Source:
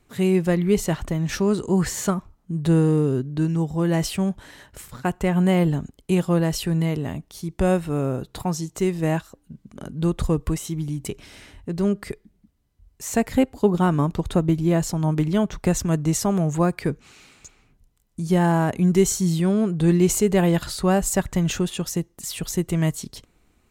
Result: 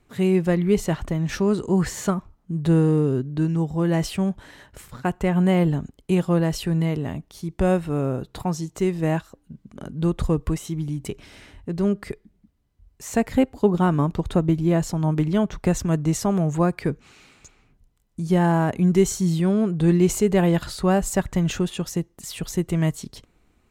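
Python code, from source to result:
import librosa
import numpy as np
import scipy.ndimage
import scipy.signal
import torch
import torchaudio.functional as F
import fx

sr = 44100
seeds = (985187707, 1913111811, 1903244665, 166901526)

y = fx.high_shelf(x, sr, hz=4700.0, db=-6.0)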